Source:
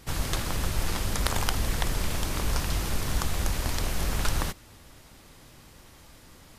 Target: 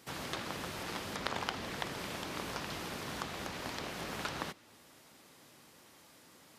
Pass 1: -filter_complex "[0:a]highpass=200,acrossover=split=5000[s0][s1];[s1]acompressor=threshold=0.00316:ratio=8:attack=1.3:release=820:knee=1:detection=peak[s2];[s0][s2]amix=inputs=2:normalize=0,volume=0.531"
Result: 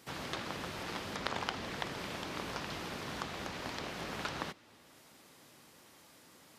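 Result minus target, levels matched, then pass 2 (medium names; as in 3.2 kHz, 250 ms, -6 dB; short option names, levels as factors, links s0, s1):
compression: peak gain reduction +6 dB
-filter_complex "[0:a]highpass=200,acrossover=split=5000[s0][s1];[s1]acompressor=threshold=0.00708:ratio=8:attack=1.3:release=820:knee=1:detection=peak[s2];[s0][s2]amix=inputs=2:normalize=0,volume=0.531"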